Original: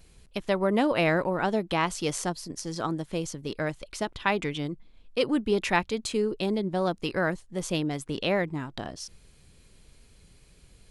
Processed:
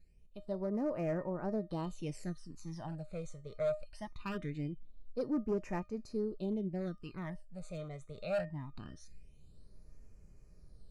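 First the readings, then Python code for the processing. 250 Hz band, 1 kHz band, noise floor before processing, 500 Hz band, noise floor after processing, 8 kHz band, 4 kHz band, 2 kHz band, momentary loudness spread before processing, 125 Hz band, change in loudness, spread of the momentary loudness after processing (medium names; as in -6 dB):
-9.5 dB, -16.5 dB, -57 dBFS, -10.0 dB, -59 dBFS, -21.5 dB, -22.5 dB, -20.5 dB, 11 LU, -7.5 dB, -11.0 dB, 13 LU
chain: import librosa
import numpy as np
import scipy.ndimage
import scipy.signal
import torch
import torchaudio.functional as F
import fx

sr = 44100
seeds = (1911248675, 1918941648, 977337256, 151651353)

y = fx.high_shelf(x, sr, hz=5000.0, db=-8.0)
y = fx.notch(y, sr, hz=3300.0, q=6.4)
y = fx.hpss(y, sr, part='percussive', gain_db=-6)
y = fx.low_shelf(y, sr, hz=420.0, db=5.5)
y = fx.rider(y, sr, range_db=4, speed_s=2.0)
y = fx.comb_fb(y, sr, f0_hz=610.0, decay_s=0.24, harmonics='all', damping=0.0, mix_pct=80)
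y = np.clip(y, -10.0 ** (-30.5 / 20.0), 10.0 ** (-30.5 / 20.0))
y = fx.phaser_stages(y, sr, stages=12, low_hz=280.0, high_hz=3600.0, hz=0.22, feedback_pct=25)
y = F.gain(torch.from_numpy(y), 1.5).numpy()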